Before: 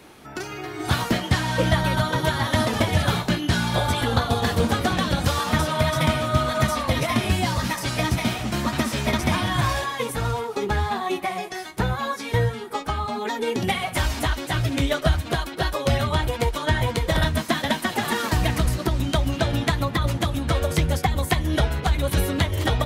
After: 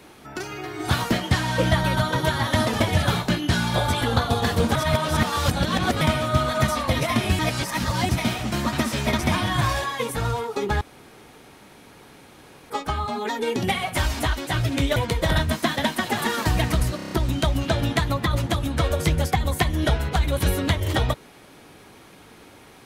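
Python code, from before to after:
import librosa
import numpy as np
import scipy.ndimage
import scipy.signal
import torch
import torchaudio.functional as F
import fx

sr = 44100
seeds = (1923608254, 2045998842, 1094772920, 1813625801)

y = fx.edit(x, sr, fx.reverse_span(start_s=4.75, length_s=1.26),
    fx.reverse_span(start_s=7.39, length_s=0.7),
    fx.room_tone_fill(start_s=10.81, length_s=1.89),
    fx.cut(start_s=14.96, length_s=1.86),
    fx.stutter(start_s=18.82, slice_s=0.03, count=6), tone=tone)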